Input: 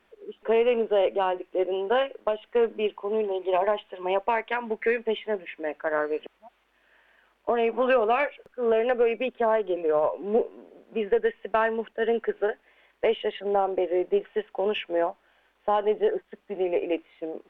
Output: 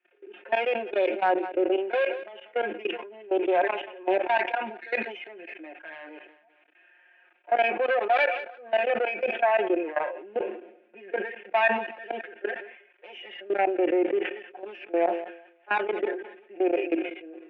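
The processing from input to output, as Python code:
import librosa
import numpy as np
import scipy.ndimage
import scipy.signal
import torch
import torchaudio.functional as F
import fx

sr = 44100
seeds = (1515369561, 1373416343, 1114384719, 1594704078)

p1 = fx.tracing_dist(x, sr, depth_ms=0.24)
p2 = fx.high_shelf(p1, sr, hz=2200.0, db=2.5)
p3 = p2 + 0.97 * np.pad(p2, (int(5.6 * sr / 1000.0), 0))[:len(p2)]
p4 = fx.hpss(p3, sr, part='percussive', gain_db=-14)
p5 = np.clip(p4, -10.0 ** (-23.0 / 20.0), 10.0 ** (-23.0 / 20.0))
p6 = p4 + (p5 * librosa.db_to_amplitude(-11.5))
p7 = fx.echo_feedback(p6, sr, ms=188, feedback_pct=47, wet_db=-22.0)
p8 = fx.level_steps(p7, sr, step_db=21)
p9 = fx.cabinet(p8, sr, low_hz=310.0, low_slope=24, high_hz=2900.0, hz=(320.0, 460.0, 700.0, 1100.0, 1600.0, 2500.0), db=(5, -4, 4, -8, 7, 10))
p10 = fx.sustainer(p9, sr, db_per_s=80.0)
y = p10 * librosa.db_to_amplitude(-1.0)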